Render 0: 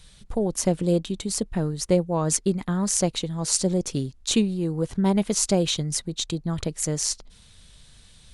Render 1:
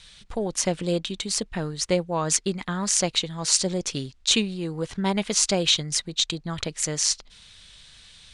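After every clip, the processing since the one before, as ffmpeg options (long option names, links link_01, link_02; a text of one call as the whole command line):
ffmpeg -i in.wav -af "lowpass=frequency=10000:width=0.5412,lowpass=frequency=10000:width=1.3066,equalizer=frequency=2800:width=0.33:gain=13,volume=-5.5dB" out.wav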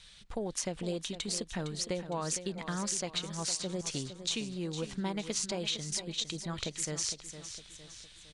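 ffmpeg -i in.wav -filter_complex "[0:a]acompressor=threshold=-25dB:ratio=6,asplit=2[link_01][link_02];[link_02]aecho=0:1:459|918|1377|1836|2295:0.282|0.13|0.0596|0.0274|0.0126[link_03];[link_01][link_03]amix=inputs=2:normalize=0,volume=-6dB" out.wav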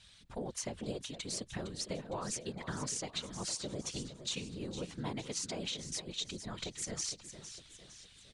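ffmpeg -i in.wav -af "afftfilt=real='hypot(re,im)*cos(2*PI*random(0))':imag='hypot(re,im)*sin(2*PI*random(1))':win_size=512:overlap=0.75,volume=1.5dB" out.wav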